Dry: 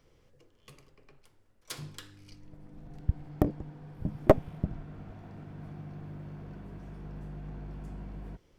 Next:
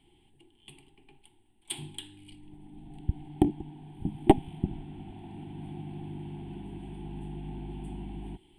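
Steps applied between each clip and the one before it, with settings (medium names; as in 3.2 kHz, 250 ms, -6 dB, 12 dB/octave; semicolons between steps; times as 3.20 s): in parallel at +2.5 dB: gain riding within 4 dB 2 s; on the sum: FFT filter 130 Hz 0 dB, 370 Hz +9 dB, 530 Hz -24 dB, 820 Hz +12 dB, 1.2 kHz -16 dB, 3.2 kHz +13 dB, 6 kHz -25 dB, 8.7 kHz +15 dB, 14 kHz -10 dB; trim -9 dB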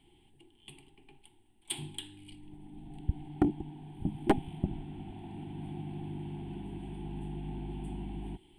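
saturation -16 dBFS, distortion -7 dB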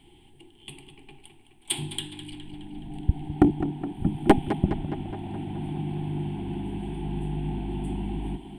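tape echo 209 ms, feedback 69%, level -9 dB, low-pass 4.2 kHz; trim +8.5 dB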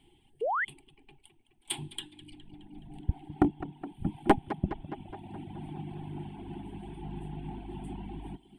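dynamic bell 1.1 kHz, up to +6 dB, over -45 dBFS, Q 0.81; reverb removal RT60 1.1 s; painted sound rise, 0.41–0.65 s, 400–2200 Hz -22 dBFS; trim -7 dB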